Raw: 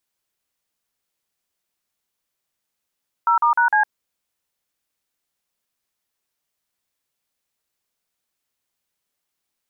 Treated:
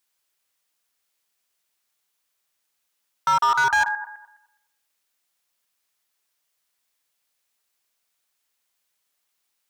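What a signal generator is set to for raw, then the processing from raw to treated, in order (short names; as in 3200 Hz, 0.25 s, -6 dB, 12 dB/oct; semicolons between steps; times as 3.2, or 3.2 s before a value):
DTMF "0*#C", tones 0.109 s, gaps 43 ms, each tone -16 dBFS
regenerating reverse delay 0.104 s, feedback 43%, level -11.5 dB; low shelf 500 Hz -10.5 dB; in parallel at -4 dB: wavefolder -23.5 dBFS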